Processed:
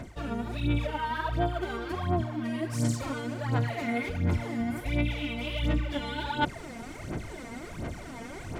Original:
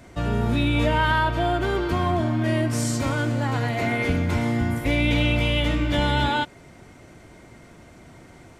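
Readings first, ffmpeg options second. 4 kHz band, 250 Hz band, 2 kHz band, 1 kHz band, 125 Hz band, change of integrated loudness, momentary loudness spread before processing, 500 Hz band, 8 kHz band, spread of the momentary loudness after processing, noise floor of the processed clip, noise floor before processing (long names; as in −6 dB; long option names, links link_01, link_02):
−10.0 dB, −7.0 dB, −9.5 dB, −8.0 dB, −7.0 dB, −9.0 dB, 4 LU, −8.5 dB, −8.0 dB, 11 LU, −42 dBFS, −48 dBFS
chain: -af "alimiter=limit=-15dB:level=0:latency=1:release=59,areverse,acompressor=threshold=-38dB:ratio=5,areverse,aphaser=in_gain=1:out_gain=1:delay=4.4:decay=0.7:speed=1.4:type=sinusoidal,volume=4dB"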